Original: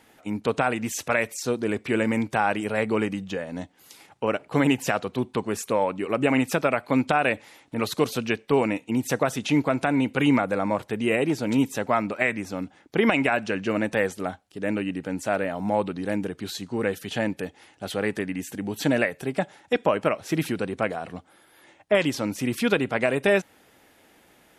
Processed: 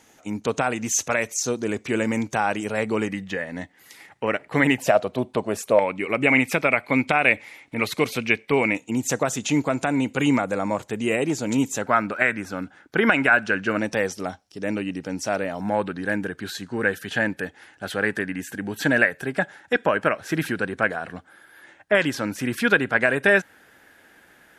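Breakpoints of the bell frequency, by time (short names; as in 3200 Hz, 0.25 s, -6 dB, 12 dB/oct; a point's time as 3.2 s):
bell +13.5 dB 0.4 oct
6400 Hz
from 3.08 s 1900 Hz
from 4.78 s 620 Hz
from 5.79 s 2200 Hz
from 8.75 s 6900 Hz
from 11.82 s 1500 Hz
from 13.79 s 5500 Hz
from 15.61 s 1600 Hz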